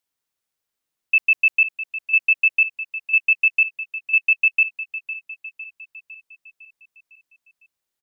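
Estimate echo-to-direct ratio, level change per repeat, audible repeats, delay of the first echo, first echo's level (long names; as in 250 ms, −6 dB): −11.5 dB, −5.5 dB, 5, 505 ms, −13.0 dB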